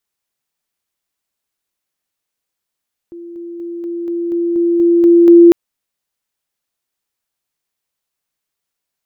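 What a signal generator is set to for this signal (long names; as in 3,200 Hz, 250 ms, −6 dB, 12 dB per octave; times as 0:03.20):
level staircase 342 Hz −28.5 dBFS, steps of 3 dB, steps 10, 0.24 s 0.00 s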